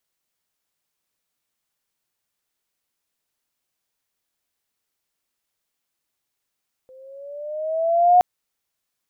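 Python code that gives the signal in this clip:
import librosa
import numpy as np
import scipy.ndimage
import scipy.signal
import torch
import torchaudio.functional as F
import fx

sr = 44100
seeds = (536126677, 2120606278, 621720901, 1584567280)

y = fx.riser_tone(sr, length_s=1.32, level_db=-8.5, wave='sine', hz=514.0, rise_st=6.0, swell_db=35.0)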